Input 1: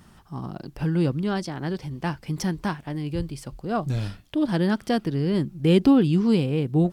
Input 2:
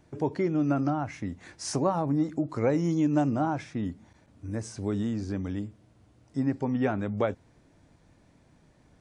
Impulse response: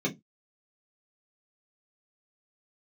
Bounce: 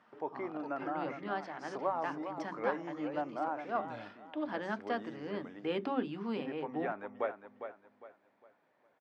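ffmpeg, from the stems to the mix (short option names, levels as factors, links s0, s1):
-filter_complex "[0:a]volume=0.596,asplit=2[s0][s1];[s1]volume=0.112[s2];[1:a]volume=0.631,asplit=2[s3][s4];[s4]volume=0.355[s5];[2:a]atrim=start_sample=2205[s6];[s2][s6]afir=irnorm=-1:irlink=0[s7];[s5]aecho=0:1:405|810|1215|1620|2025:1|0.33|0.109|0.0359|0.0119[s8];[s0][s3][s7][s8]amix=inputs=4:normalize=0,highpass=590,lowpass=2000"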